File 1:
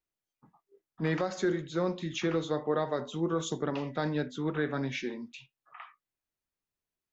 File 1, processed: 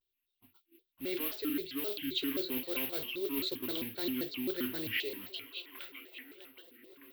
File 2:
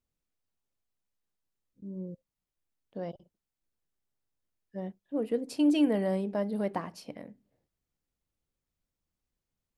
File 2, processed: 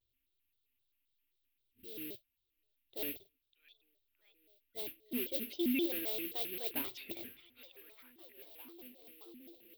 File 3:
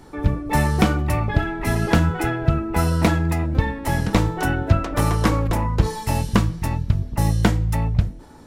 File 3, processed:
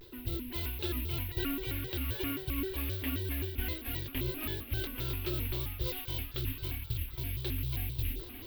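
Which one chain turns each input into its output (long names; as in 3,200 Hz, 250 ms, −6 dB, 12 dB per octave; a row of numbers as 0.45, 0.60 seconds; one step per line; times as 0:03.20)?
reversed playback
downward compressor 16 to 1, threshold −31 dBFS
reversed playback
flat-topped bell 800 Hz +9 dB
on a send: echo through a band-pass that steps 610 ms, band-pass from 3,000 Hz, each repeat −0.7 octaves, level −8 dB
on the sum: noise that follows the level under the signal 16 dB
drawn EQ curve 110 Hz 0 dB, 200 Hz −29 dB, 310 Hz +5 dB, 570 Hz −20 dB, 990 Hz −22 dB, 3,200 Hz +11 dB, 8,900 Hz −27 dB, 14,000 Hz +11 dB
pitch modulation by a square or saw wave square 3.8 Hz, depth 250 cents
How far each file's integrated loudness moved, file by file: −3.0, −7.0, −14.0 LU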